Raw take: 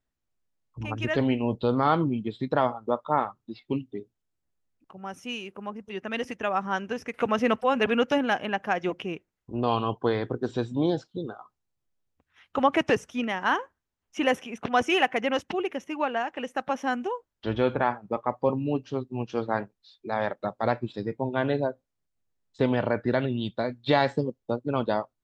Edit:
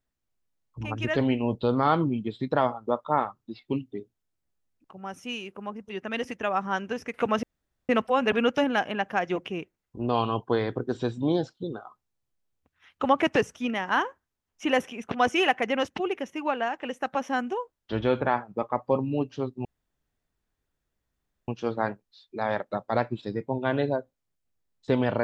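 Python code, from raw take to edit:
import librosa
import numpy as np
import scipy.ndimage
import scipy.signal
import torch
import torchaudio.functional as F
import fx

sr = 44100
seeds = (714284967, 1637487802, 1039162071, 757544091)

y = fx.edit(x, sr, fx.insert_room_tone(at_s=7.43, length_s=0.46),
    fx.insert_room_tone(at_s=19.19, length_s=1.83), tone=tone)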